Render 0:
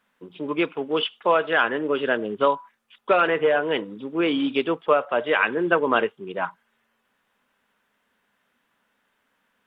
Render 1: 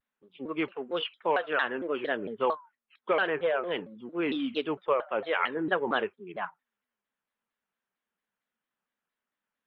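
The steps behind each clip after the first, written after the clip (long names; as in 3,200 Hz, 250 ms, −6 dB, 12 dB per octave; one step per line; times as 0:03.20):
noise reduction from a noise print of the clip's start 12 dB
pitch modulation by a square or saw wave saw down 4.4 Hz, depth 250 cents
level −7.5 dB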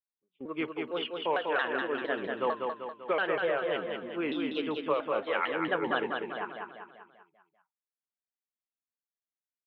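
noise gate −46 dBFS, range −20 dB
on a send: repeating echo 195 ms, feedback 50%, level −4 dB
on the sum: level −3 dB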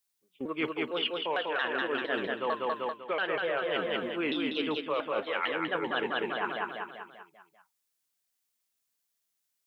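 high-shelf EQ 2,800 Hz +10 dB
reversed playback
downward compressor, threshold −35 dBFS, peak gain reduction 12.5 dB
reversed playback
level +7 dB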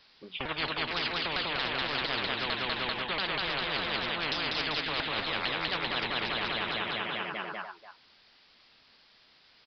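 far-end echo of a speakerphone 290 ms, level −17 dB
downsampling to 11,025 Hz
every bin compressed towards the loudest bin 10 to 1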